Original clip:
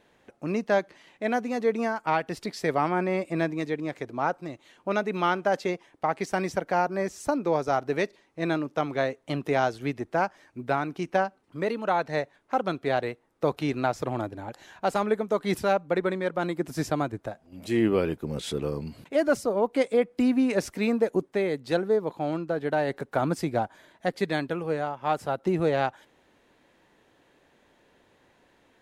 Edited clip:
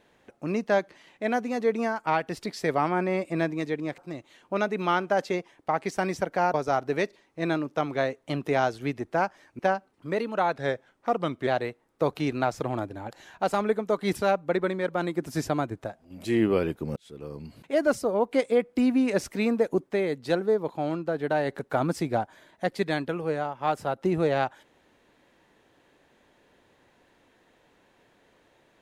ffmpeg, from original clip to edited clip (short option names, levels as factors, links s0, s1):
-filter_complex "[0:a]asplit=7[s0][s1][s2][s3][s4][s5][s6];[s0]atrim=end=3.982[s7];[s1]atrim=start=4.328:end=6.892[s8];[s2]atrim=start=7.538:end=10.592[s9];[s3]atrim=start=11.088:end=12.064[s10];[s4]atrim=start=12.06:end=12.89,asetpts=PTS-STARTPTS,asetrate=40131,aresample=44100,atrim=end_sample=40223,asetpts=PTS-STARTPTS[s11];[s5]atrim=start=12.886:end=18.38,asetpts=PTS-STARTPTS,afade=t=out:st=5.49:d=0.004:c=hsin[s12];[s6]atrim=start=18.38,asetpts=PTS-STARTPTS,afade=t=in:d=0.86[s13];[s7][s8]acrossfade=d=0.004:c1=hsin:c2=hsin[s14];[s14][s9]acrossfade=d=0.004:c1=hsin:c2=hsin[s15];[s15][s10]acrossfade=d=0.004:c1=hsin:c2=hsin[s16];[s16][s11]acrossfade=d=0.004:c1=hsin:c2=hsin[s17];[s12][s13]concat=n=2:v=0:a=1[s18];[s17][s18]acrossfade=d=0.004:c1=hsin:c2=hsin"